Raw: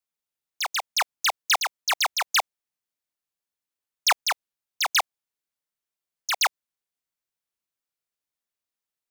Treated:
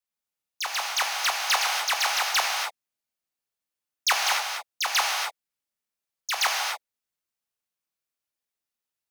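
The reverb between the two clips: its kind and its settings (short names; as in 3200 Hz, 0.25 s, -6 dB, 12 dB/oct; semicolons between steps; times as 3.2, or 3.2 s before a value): non-linear reverb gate 0.31 s flat, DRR -1 dB; gain -3 dB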